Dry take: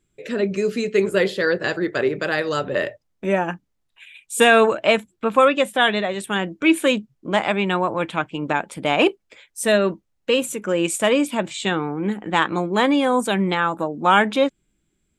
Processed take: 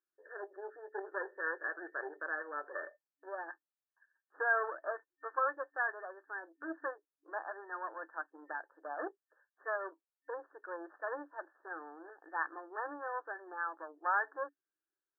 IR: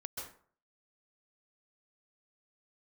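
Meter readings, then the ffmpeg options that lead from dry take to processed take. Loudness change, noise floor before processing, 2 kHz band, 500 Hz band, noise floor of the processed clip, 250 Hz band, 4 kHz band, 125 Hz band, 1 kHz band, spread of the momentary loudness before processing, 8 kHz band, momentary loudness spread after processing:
-19.5 dB, -71 dBFS, -15.0 dB, -23.0 dB, under -85 dBFS, -30.5 dB, under -40 dB, under -40 dB, -16.5 dB, 9 LU, under -40 dB, 14 LU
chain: -af "aeval=exprs='0.841*(cos(1*acos(clip(val(0)/0.841,-1,1)))-cos(1*PI/2))+0.119*(cos(6*acos(clip(val(0)/0.841,-1,1)))-cos(6*PI/2))':c=same,afftfilt=real='re*between(b*sr/4096,280,1800)':imag='im*between(b*sr/4096,280,1800)':win_size=4096:overlap=0.75,aderivative"

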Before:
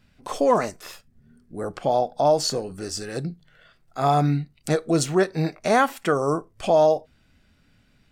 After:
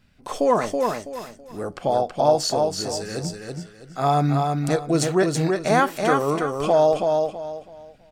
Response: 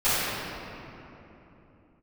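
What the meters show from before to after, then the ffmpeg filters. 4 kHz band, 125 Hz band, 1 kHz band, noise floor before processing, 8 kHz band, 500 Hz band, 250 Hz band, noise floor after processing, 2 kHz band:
+1.5 dB, +1.5 dB, +1.5 dB, -62 dBFS, +1.5 dB, +1.5 dB, +1.5 dB, -51 dBFS, +1.5 dB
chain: -af "aecho=1:1:327|654|981|1308:0.631|0.177|0.0495|0.0139"

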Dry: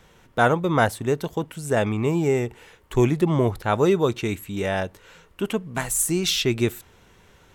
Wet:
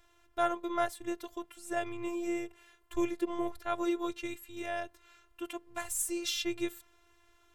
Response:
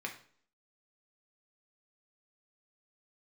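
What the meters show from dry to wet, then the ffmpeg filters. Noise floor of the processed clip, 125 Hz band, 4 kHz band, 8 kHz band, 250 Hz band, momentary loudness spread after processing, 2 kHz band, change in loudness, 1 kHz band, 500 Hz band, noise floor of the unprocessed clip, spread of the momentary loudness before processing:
-67 dBFS, -31.0 dB, -11.5 dB, -10.5 dB, -11.5 dB, 11 LU, -13.0 dB, -12.5 dB, -10.0 dB, -13.5 dB, -55 dBFS, 9 LU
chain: -af "afftfilt=real='hypot(re,im)*cos(PI*b)':imag='0':win_size=512:overlap=0.75,equalizer=f=220:w=1.9:g=-11,volume=0.422"

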